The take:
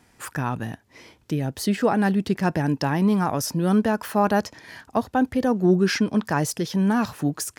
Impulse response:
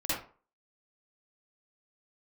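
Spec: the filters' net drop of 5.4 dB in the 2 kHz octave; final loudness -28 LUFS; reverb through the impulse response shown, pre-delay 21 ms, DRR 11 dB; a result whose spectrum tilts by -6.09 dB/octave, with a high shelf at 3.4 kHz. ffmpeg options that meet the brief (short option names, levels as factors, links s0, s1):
-filter_complex "[0:a]equalizer=f=2000:t=o:g=-6,highshelf=f=3400:g=-5,asplit=2[s0][s1];[1:a]atrim=start_sample=2205,adelay=21[s2];[s1][s2]afir=irnorm=-1:irlink=0,volume=0.119[s3];[s0][s3]amix=inputs=2:normalize=0,volume=0.596"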